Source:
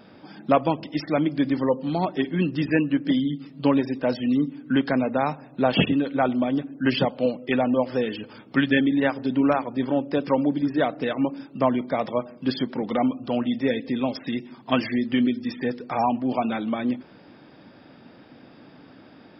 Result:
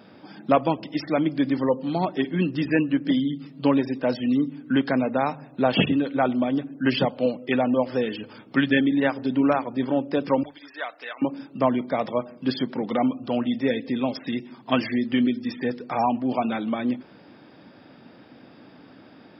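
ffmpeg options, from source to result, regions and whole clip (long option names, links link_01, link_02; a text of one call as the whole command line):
ffmpeg -i in.wav -filter_complex "[0:a]asettb=1/sr,asplit=3[link_01][link_02][link_03];[link_01]atrim=end=10.434[link_04];[link_02]atrim=start=10.43:end=11.22,asetpts=PTS-STARTPTS,afade=type=in:duration=0.004:curve=qsin,afade=type=out:start_time=0.786:duration=0.004:curve=qsin,highpass=1200,acrossover=split=2600[link_05][link_06];[link_06]acompressor=threshold=-43dB:ratio=4:attack=1:release=60[link_07];[link_05][link_07]amix=inputs=2:normalize=0[link_08];[link_03]atrim=start=11.216[link_09];[link_04][link_08]acrossfade=duration=0.004:curve1=hsin:curve2=qsin[link_10];[link_10][link_09]acrossfade=duration=0.004:curve1=qsin:curve2=hsin,highpass=60,bandreject=frequency=50:width_type=h:width=6,bandreject=frequency=100:width_type=h:width=6,bandreject=frequency=150:width_type=h:width=6" out.wav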